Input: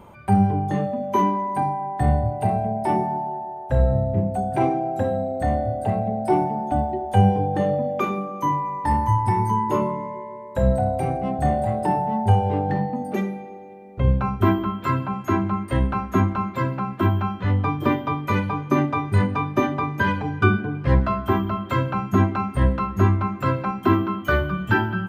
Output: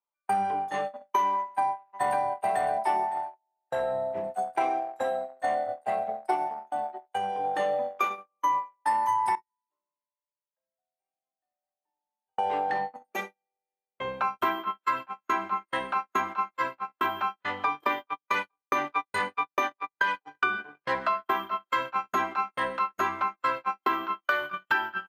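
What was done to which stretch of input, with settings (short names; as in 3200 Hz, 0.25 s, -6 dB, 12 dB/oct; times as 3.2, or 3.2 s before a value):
1.36–2.22 echo throw 0.56 s, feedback 30%, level -1.5 dB
6.35–7.44 compressor 4:1, threshold -19 dBFS
9.35–12.38 resonator 310 Hz, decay 0.77 s, mix 90%
18.06–20.25 gate -24 dBFS, range -12 dB
whole clip: gate -23 dBFS, range -48 dB; HPF 850 Hz 12 dB/oct; compressor, threshold -26 dBFS; gain +4 dB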